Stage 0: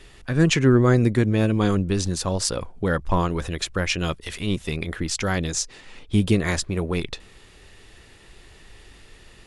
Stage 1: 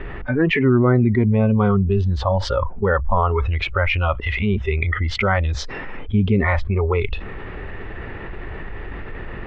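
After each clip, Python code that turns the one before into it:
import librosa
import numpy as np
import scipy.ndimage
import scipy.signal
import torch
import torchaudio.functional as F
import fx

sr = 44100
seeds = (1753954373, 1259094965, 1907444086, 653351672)

y = fx.noise_reduce_blind(x, sr, reduce_db=20)
y = scipy.signal.sosfilt(scipy.signal.butter(4, 2000.0, 'lowpass', fs=sr, output='sos'), y)
y = fx.env_flatten(y, sr, amount_pct=70)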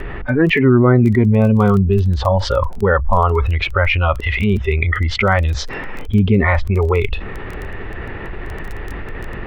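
y = fx.dmg_crackle(x, sr, seeds[0], per_s=14.0, level_db=-26.0)
y = F.gain(torch.from_numpy(y), 4.0).numpy()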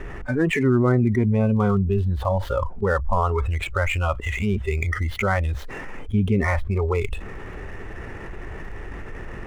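y = scipy.signal.medfilt(x, 9)
y = F.gain(torch.from_numpy(y), -7.0).numpy()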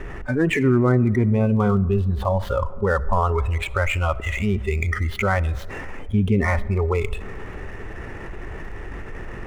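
y = fx.rev_freeverb(x, sr, rt60_s=2.1, hf_ratio=0.25, predelay_ms=25, drr_db=19.0)
y = F.gain(torch.from_numpy(y), 1.0).numpy()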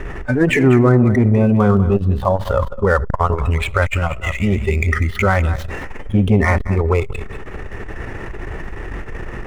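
y = x + 10.0 ** (-12.5 / 20.0) * np.pad(x, (int(198 * sr / 1000.0), 0))[:len(x)]
y = fx.transformer_sat(y, sr, knee_hz=210.0)
y = F.gain(torch.from_numpy(y), 6.5).numpy()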